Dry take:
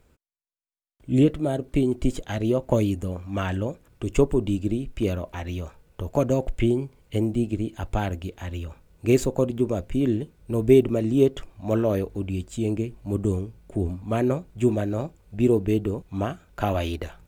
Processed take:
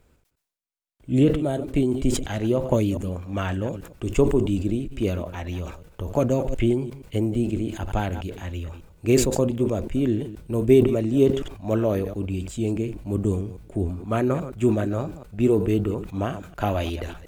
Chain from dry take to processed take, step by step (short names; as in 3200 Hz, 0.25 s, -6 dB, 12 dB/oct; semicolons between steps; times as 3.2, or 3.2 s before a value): reverse delay 0.119 s, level -14 dB; 13.9–16.07 bell 1300 Hz +6.5 dB 0.4 oct; sustainer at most 81 dB/s